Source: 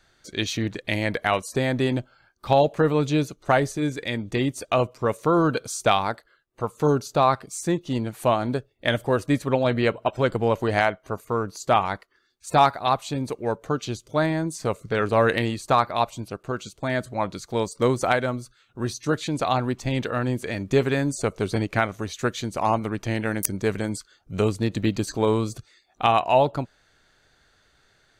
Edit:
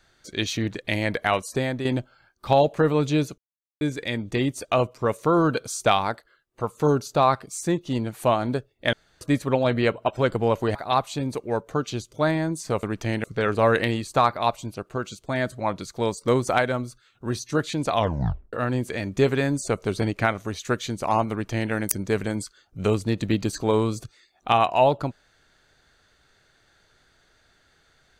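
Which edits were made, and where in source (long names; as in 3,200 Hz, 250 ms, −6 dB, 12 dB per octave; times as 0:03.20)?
0:01.41–0:01.85: fade out equal-power, to −8.5 dB
0:03.38–0:03.81: silence
0:08.93–0:09.21: fill with room tone
0:10.75–0:12.70: remove
0:19.46: tape stop 0.61 s
0:22.85–0:23.26: duplicate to 0:14.78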